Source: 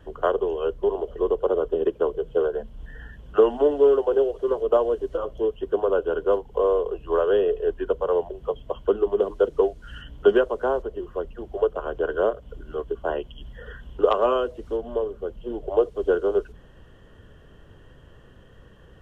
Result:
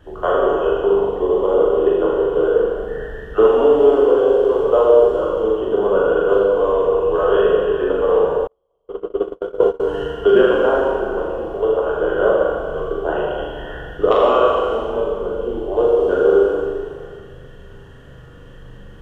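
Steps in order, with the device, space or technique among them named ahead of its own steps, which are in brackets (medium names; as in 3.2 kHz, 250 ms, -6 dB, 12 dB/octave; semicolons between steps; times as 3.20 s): tunnel (flutter echo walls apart 6.9 m, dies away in 0.61 s; reverberation RT60 2.1 s, pre-delay 12 ms, DRR -3.5 dB); 8.47–9.80 s: gate -13 dBFS, range -46 dB; trim +1.5 dB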